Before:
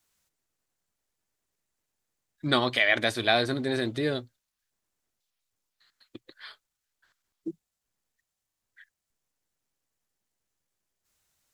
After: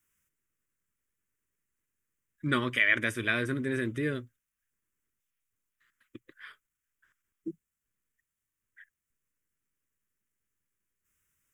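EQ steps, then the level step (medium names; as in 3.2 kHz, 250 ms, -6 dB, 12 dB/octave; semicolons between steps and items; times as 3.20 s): static phaser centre 1.8 kHz, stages 4; 0.0 dB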